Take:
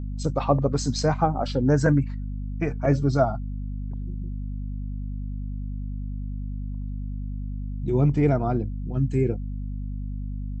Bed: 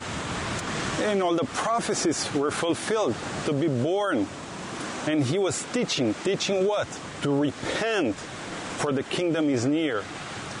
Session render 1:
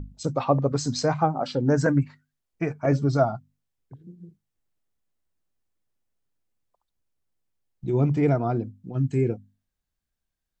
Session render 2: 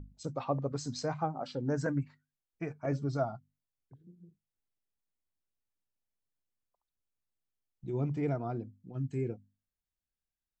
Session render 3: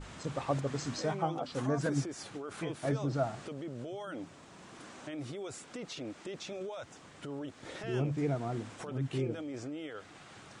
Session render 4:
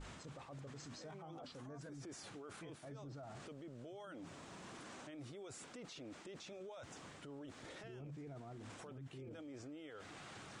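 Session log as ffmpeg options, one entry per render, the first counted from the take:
-af "bandreject=f=50:t=h:w=6,bandreject=f=100:t=h:w=6,bandreject=f=150:t=h:w=6,bandreject=f=200:t=h:w=6,bandreject=f=250:t=h:w=6"
-af "volume=-11dB"
-filter_complex "[1:a]volume=-17dB[a];[0:a][a]amix=inputs=2:normalize=0"
-af "areverse,acompressor=threshold=-44dB:ratio=5,areverse,alimiter=level_in=20.5dB:limit=-24dB:level=0:latency=1:release=12,volume=-20.5dB"

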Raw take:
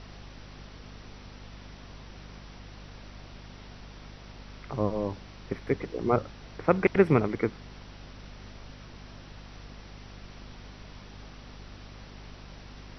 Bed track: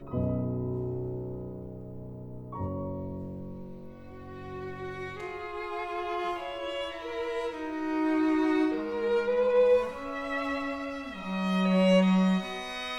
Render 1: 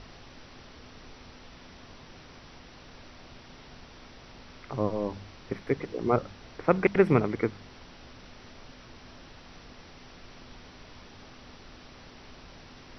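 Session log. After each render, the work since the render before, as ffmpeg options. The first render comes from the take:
-af "bandreject=f=50:t=h:w=4,bandreject=f=100:t=h:w=4,bandreject=f=150:t=h:w=4,bandreject=f=200:t=h:w=4"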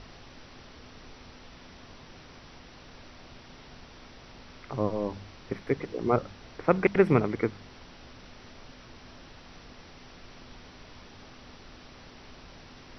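-af anull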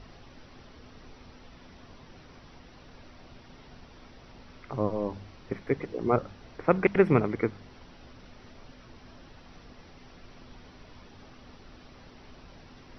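-af "afftdn=nr=6:nf=-51"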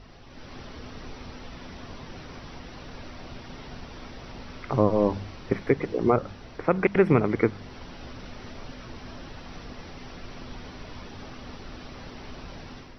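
-af "dynaudnorm=f=260:g=3:m=9.5dB,alimiter=limit=-7.5dB:level=0:latency=1:release=163"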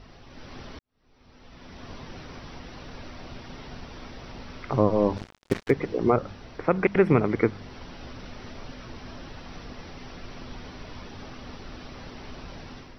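-filter_complex "[0:a]asplit=3[a][b][c];[a]afade=t=out:st=5.16:d=0.02[d];[b]acrusher=bits=4:mix=0:aa=0.5,afade=t=in:st=5.16:d=0.02,afade=t=out:st=5.69:d=0.02[e];[c]afade=t=in:st=5.69:d=0.02[f];[d][e][f]amix=inputs=3:normalize=0,asplit=2[g][h];[g]atrim=end=0.79,asetpts=PTS-STARTPTS,afade=t=out:st=0.786:d=0.004:c=hsin[i];[h]atrim=start=0.79,asetpts=PTS-STARTPTS,afade=t=in:d=1.12:c=qua[j];[i][j]concat=n=2:v=0:a=1"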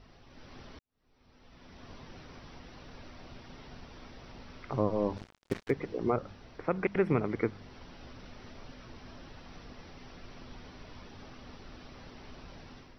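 -af "volume=-8dB"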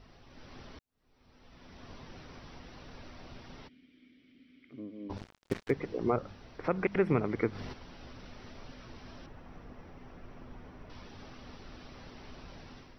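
-filter_complex "[0:a]asplit=3[a][b][c];[a]afade=t=out:st=3.67:d=0.02[d];[b]asplit=3[e][f][g];[e]bandpass=f=270:t=q:w=8,volume=0dB[h];[f]bandpass=f=2.29k:t=q:w=8,volume=-6dB[i];[g]bandpass=f=3.01k:t=q:w=8,volume=-9dB[j];[h][i][j]amix=inputs=3:normalize=0,afade=t=in:st=3.67:d=0.02,afade=t=out:st=5.09:d=0.02[k];[c]afade=t=in:st=5.09:d=0.02[l];[d][k][l]amix=inputs=3:normalize=0,asplit=3[m][n][o];[m]afade=t=out:st=6.63:d=0.02[p];[n]acompressor=mode=upward:threshold=-30dB:ratio=2.5:attack=3.2:release=140:knee=2.83:detection=peak,afade=t=in:st=6.63:d=0.02,afade=t=out:st=7.72:d=0.02[q];[o]afade=t=in:st=7.72:d=0.02[r];[p][q][r]amix=inputs=3:normalize=0,asettb=1/sr,asplit=3[s][t][u];[s]atrim=end=9.264[v];[t]atrim=start=9.26:end=10.9,asetpts=PTS-STARTPTS,afade=t=in:d=0.004:c=qsin,afade=t=out:st=1.636:d=0.004:c=qsin,equalizer=f=4.5k:w=0.82:g=-14.5[w];[u]atrim=start=10.896[x];[v][w]acrossfade=d=0.004:c1=hsin:c2=qsin[y];[y][x]acrossfade=d=0.004:c1=qsin:c2=hsin"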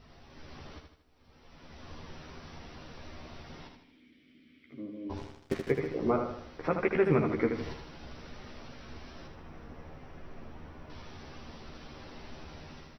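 -filter_complex "[0:a]asplit=2[a][b];[b]adelay=13,volume=-5dB[c];[a][c]amix=inputs=2:normalize=0,asplit=2[d][e];[e]aecho=0:1:78|156|234|312|390|468:0.501|0.231|0.106|0.0488|0.0224|0.0103[f];[d][f]amix=inputs=2:normalize=0"

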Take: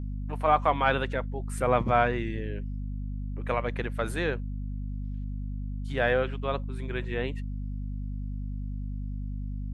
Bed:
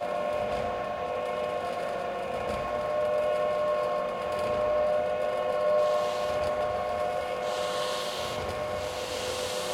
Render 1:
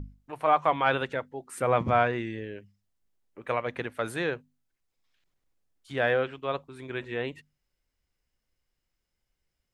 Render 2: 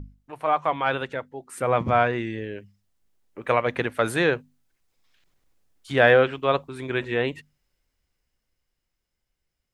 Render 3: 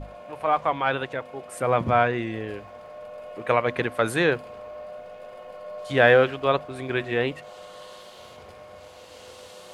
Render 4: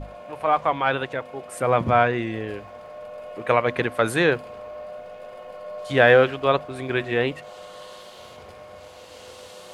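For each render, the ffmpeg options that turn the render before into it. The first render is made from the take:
-af "bandreject=f=50:t=h:w=6,bandreject=f=100:t=h:w=6,bandreject=f=150:t=h:w=6,bandreject=f=200:t=h:w=6,bandreject=f=250:t=h:w=6"
-af "dynaudnorm=f=230:g=21:m=11.5dB"
-filter_complex "[1:a]volume=-13dB[a];[0:a][a]amix=inputs=2:normalize=0"
-af "volume=2dB,alimiter=limit=-2dB:level=0:latency=1"

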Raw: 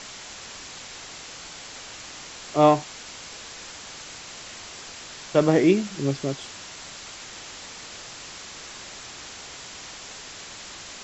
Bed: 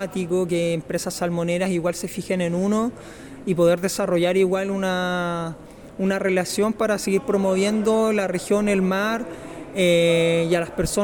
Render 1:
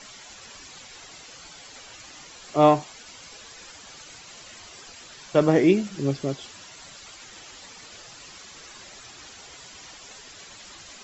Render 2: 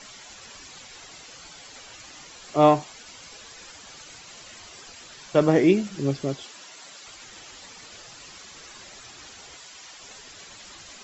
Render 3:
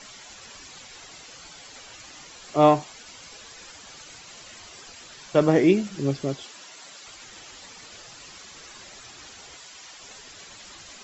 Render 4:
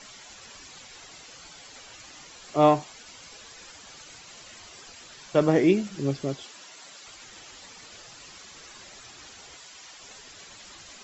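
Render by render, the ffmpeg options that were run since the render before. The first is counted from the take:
-af "afftdn=nr=10:nf=-41"
-filter_complex "[0:a]asettb=1/sr,asplit=3[a][b][c];[a]atrim=end=6.434[d];[b]atrim=start=6.43:end=7.07,asetpts=PTS-STARTPTS,afade=t=in:d=0.004:c=qsin,afade=t=out:st=0.636:d=0.004:c=qsin,highpass=250[e];[c]atrim=start=7.066[f];[d][e]acrossfade=d=0.004:c1=hsin:c2=qsin[g];[g][f]acrossfade=d=0.004:c1=qsin:c2=hsin,asettb=1/sr,asplit=3[h][i][j];[h]atrim=end=9.584[k];[i]atrim=start=9.58:end=9.99,asetpts=PTS-STARTPTS,afade=t=in:d=0.004:c=qsin,afade=t=out:st=0.406:d=0.004:c=qsin,lowshelf=f=370:g=-10.5[l];[j]atrim=start=9.986[m];[k][l]acrossfade=d=0.004:c1=hsin:c2=qsin[n];[n][m]acrossfade=d=0.004:c1=qsin:c2=hsin"
-af anull
-af "volume=-2dB"

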